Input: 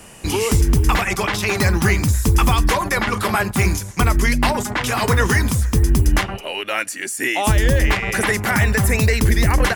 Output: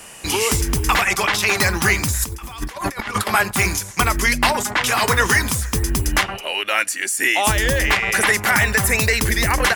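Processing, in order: low shelf 480 Hz -11.5 dB; 2.16–3.27 negative-ratio compressor -29 dBFS, ratio -0.5; gain +4.5 dB

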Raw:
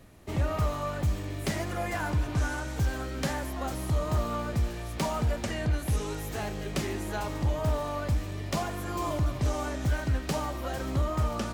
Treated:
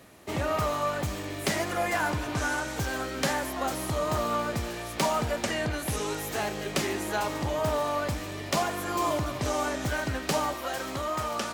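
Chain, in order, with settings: HPF 360 Hz 6 dB/oct, from 10.54 s 790 Hz; gain +6 dB

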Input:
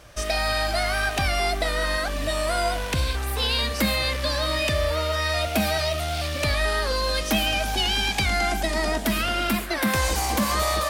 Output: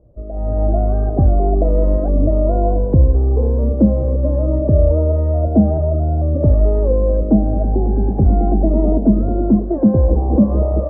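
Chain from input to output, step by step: inverse Chebyshev low-pass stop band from 3000 Hz, stop band 80 dB; AGC gain up to 16.5 dB

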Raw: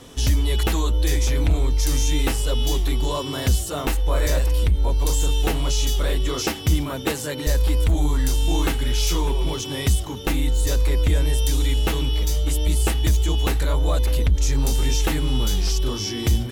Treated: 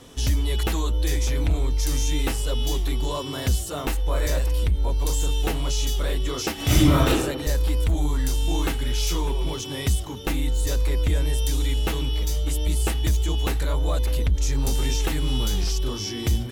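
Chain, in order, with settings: 6.55–7.07 reverb throw, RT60 1 s, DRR -11 dB; 14.67–15.64 three-band squash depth 70%; gain -3 dB

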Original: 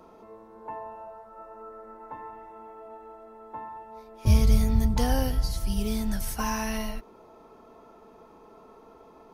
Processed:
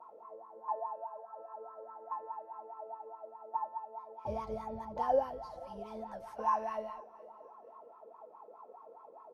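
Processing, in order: 0.92–2.61 whine 1600 Hz -66 dBFS; wah 4.8 Hz 500–1100 Hz, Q 11; feedback echo 0.479 s, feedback 36%, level -23 dB; gain +9.5 dB

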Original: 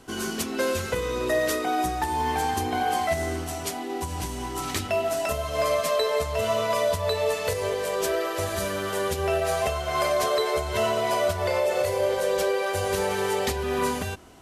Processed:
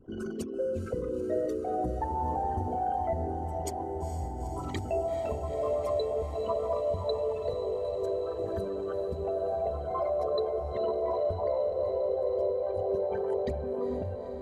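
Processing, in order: formant sharpening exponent 3; diffused feedback echo 0.452 s, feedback 79%, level -9.5 dB; gain -5.5 dB

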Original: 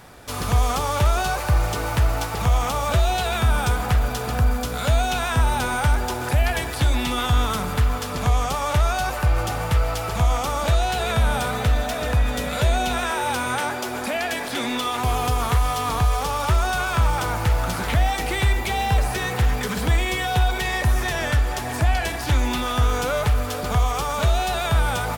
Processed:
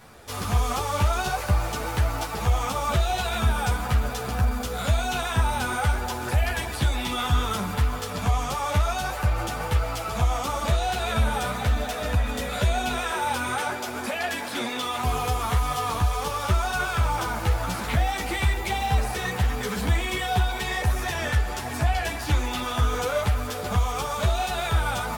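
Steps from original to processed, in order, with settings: ensemble effect

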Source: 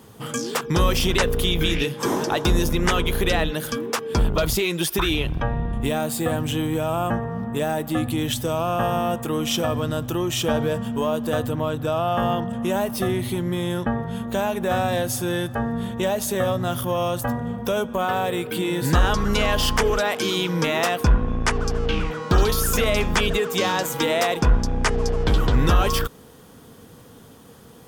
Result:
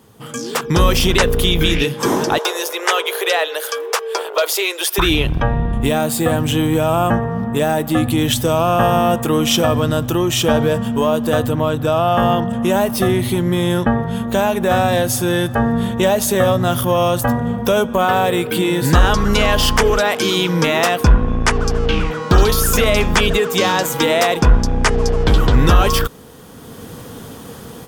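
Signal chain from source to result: AGC gain up to 15 dB; 2.38–4.98 steep high-pass 410 Hz 48 dB/oct; gain -2 dB

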